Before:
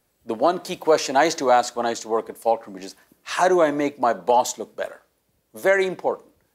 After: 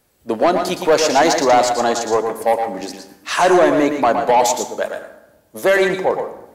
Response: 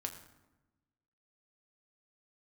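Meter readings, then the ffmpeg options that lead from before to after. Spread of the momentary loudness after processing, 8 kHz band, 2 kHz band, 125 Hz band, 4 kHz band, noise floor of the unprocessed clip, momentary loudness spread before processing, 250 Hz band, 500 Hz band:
12 LU, +7.5 dB, +5.5 dB, +7.0 dB, +7.5 dB, -69 dBFS, 15 LU, +6.5 dB, +5.5 dB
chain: -filter_complex "[0:a]asoftclip=type=tanh:threshold=0.2,asplit=2[s0][s1];[1:a]atrim=start_sample=2205,adelay=115[s2];[s1][s2]afir=irnorm=-1:irlink=0,volume=0.596[s3];[s0][s3]amix=inputs=2:normalize=0,volume=2.24"

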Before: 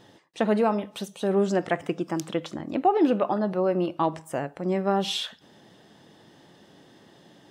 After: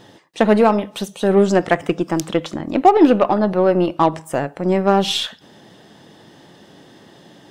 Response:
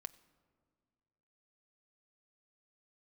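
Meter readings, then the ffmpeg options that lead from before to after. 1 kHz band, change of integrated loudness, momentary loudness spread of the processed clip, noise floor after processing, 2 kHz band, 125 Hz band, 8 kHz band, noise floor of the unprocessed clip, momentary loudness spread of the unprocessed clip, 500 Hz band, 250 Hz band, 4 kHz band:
+9.5 dB, +9.0 dB, 10 LU, -48 dBFS, +9.5 dB, +8.5 dB, +9.0 dB, -56 dBFS, 9 LU, +9.0 dB, +9.0 dB, +8.5 dB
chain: -af "acontrast=85,aeval=exprs='0.501*(cos(1*acos(clip(val(0)/0.501,-1,1)))-cos(1*PI/2))+0.0501*(cos(3*acos(clip(val(0)/0.501,-1,1)))-cos(3*PI/2))+0.00794*(cos(8*acos(clip(val(0)/0.501,-1,1)))-cos(8*PI/2))':c=same,volume=1.58"

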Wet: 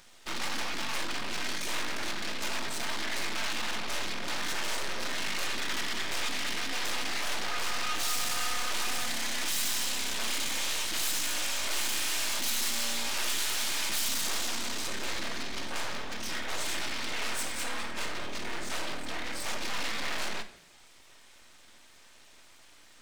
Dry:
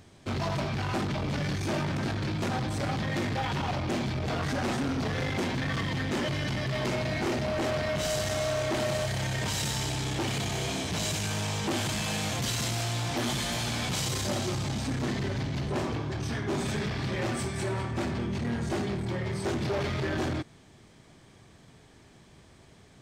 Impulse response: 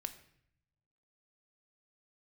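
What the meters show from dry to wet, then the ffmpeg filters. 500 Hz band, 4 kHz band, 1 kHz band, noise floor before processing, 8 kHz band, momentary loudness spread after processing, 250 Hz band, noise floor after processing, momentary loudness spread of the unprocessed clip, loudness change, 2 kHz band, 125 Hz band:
-10.5 dB, +3.0 dB, -2.5 dB, -56 dBFS, +4.0 dB, 7 LU, -12.5 dB, -55 dBFS, 3 LU, -1.5 dB, +1.5 dB, -21.0 dB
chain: -filter_complex "[0:a]aeval=exprs='abs(val(0))':c=same,tiltshelf=f=700:g=-8.5[s0];[1:a]atrim=start_sample=2205[s1];[s0][s1]afir=irnorm=-1:irlink=0"

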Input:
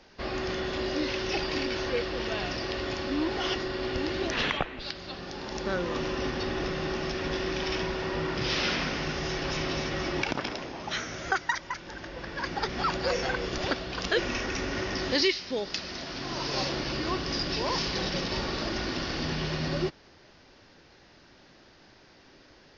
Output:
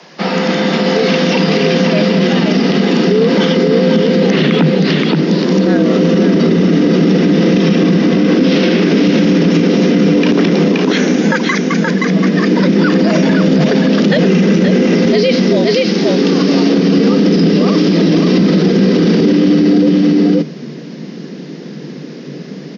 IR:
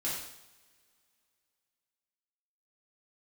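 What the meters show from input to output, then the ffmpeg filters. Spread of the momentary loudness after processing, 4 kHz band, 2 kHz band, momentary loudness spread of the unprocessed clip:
5 LU, +11.5 dB, +12.5 dB, 6 LU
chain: -filter_complex "[0:a]asubboost=boost=10:cutoff=210,acrossover=split=4300[s0][s1];[s1]acompressor=threshold=0.00562:ratio=4:attack=1:release=60[s2];[s0][s2]amix=inputs=2:normalize=0,afreqshift=140,aecho=1:1:524:0.562,alimiter=level_in=8.41:limit=0.891:release=50:level=0:latency=1,volume=0.794"

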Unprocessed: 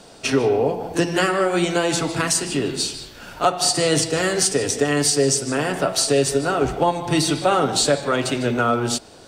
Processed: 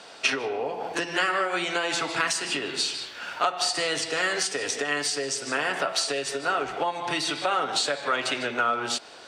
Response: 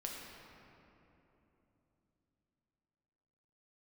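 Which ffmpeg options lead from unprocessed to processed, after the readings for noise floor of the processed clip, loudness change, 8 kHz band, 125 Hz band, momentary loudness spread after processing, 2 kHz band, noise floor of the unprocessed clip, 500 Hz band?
-46 dBFS, -6.5 dB, -9.0 dB, -19.5 dB, 4 LU, -0.5 dB, -44 dBFS, -10.0 dB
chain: -af "acompressor=threshold=0.0794:ratio=6,bandpass=f=2000:t=q:w=0.7:csg=0,volume=1.88"

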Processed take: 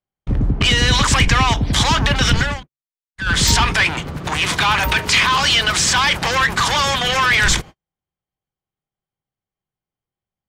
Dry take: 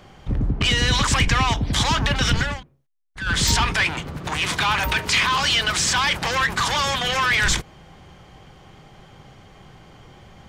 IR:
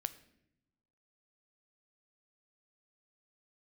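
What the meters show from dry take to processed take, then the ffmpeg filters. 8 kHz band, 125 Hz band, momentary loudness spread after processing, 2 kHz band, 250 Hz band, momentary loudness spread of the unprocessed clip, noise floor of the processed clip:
+4.5 dB, +4.5 dB, 8 LU, +4.5 dB, +4.5 dB, 7 LU, under -85 dBFS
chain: -af "agate=range=0.00355:threshold=0.0178:ratio=16:detection=peak,volume=1.68"

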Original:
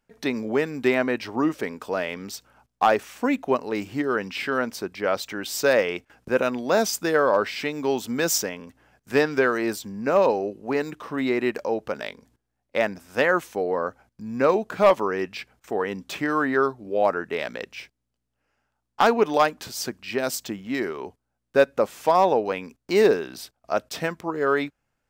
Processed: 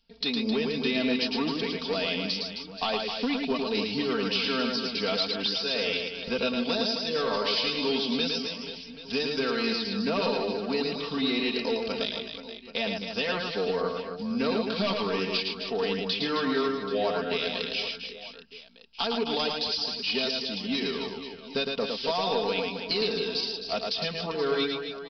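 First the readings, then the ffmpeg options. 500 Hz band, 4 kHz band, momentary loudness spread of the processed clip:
-6.5 dB, +8.5 dB, 6 LU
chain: -filter_complex "[0:a]lowshelf=f=180:g=10,aecho=1:1:4.4:0.79,acrossover=split=920[s0][s1];[s1]aexciter=amount=12.5:drive=3.6:freq=2800[s2];[s0][s2]amix=inputs=2:normalize=0,acompressor=threshold=0.158:ratio=6,aresample=11025,asoftclip=type=tanh:threshold=0.211,aresample=44100,aecho=1:1:110|264|479.6|781.4|1204:0.631|0.398|0.251|0.158|0.1,volume=0.473"

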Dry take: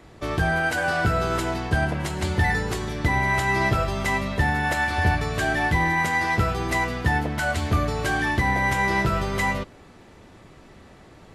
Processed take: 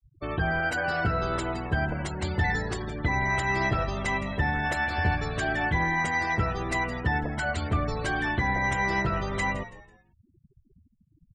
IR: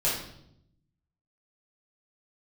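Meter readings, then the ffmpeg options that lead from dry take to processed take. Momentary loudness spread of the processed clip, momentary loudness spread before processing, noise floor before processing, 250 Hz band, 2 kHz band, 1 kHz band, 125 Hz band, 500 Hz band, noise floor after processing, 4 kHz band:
5 LU, 5 LU, -49 dBFS, -4.5 dB, -4.0 dB, -4.5 dB, -4.5 dB, -4.5 dB, -66 dBFS, -5.5 dB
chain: -filter_complex "[0:a]afftfilt=real='re*gte(hypot(re,im),0.0282)':imag='im*gte(hypot(re,im),0.0282)':win_size=1024:overlap=0.75,crystalizer=i=1:c=0,asplit=4[s0][s1][s2][s3];[s1]adelay=165,afreqshift=-83,volume=0.168[s4];[s2]adelay=330,afreqshift=-166,volume=0.0569[s5];[s3]adelay=495,afreqshift=-249,volume=0.0195[s6];[s0][s4][s5][s6]amix=inputs=4:normalize=0,volume=0.596"

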